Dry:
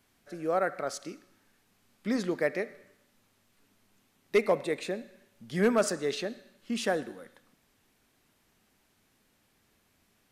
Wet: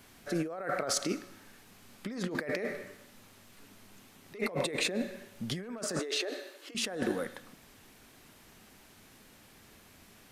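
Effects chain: in parallel at -1 dB: limiter -27 dBFS, peak gain reduction 11 dB; on the sum: negative-ratio compressor -35 dBFS, ratio -1; 5.99–6.75 brick-wall FIR high-pass 270 Hz

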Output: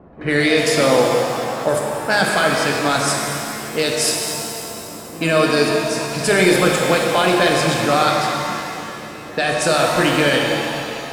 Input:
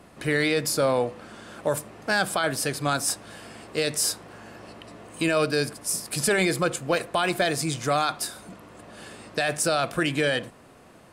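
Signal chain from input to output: pre-echo 83 ms -19 dB; low-pass opened by the level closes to 860 Hz, open at -19.5 dBFS; shimmer reverb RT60 2.8 s, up +7 st, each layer -8 dB, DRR -0.5 dB; gain +5.5 dB

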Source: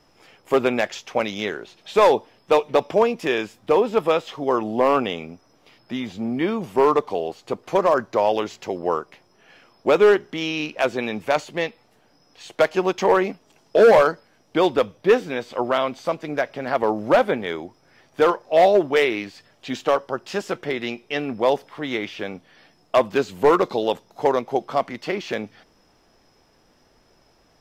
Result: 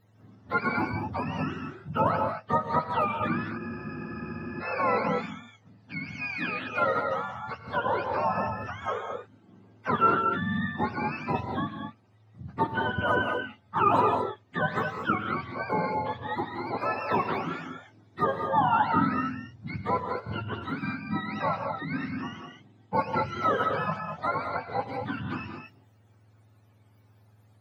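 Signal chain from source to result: spectrum mirrored in octaves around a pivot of 750 Hz; non-linear reverb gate 0.25 s rising, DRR 3.5 dB; spectral freeze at 3.59, 1.03 s; gain -6.5 dB

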